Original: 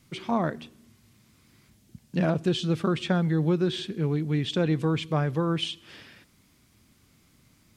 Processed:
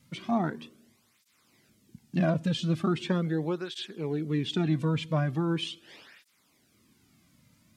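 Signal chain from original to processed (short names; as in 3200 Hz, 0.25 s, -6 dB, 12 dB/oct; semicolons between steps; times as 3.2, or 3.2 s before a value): tape flanging out of phase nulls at 0.4 Hz, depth 2.8 ms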